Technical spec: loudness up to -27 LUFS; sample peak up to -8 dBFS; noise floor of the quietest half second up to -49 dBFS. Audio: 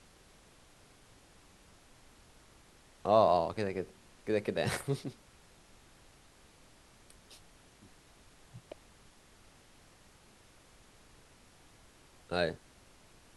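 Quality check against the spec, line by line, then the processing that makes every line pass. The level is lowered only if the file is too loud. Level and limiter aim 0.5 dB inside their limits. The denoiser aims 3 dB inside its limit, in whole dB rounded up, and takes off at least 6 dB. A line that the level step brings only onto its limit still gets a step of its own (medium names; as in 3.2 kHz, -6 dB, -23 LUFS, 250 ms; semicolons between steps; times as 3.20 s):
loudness -32.5 LUFS: pass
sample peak -13.0 dBFS: pass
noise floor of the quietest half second -61 dBFS: pass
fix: none needed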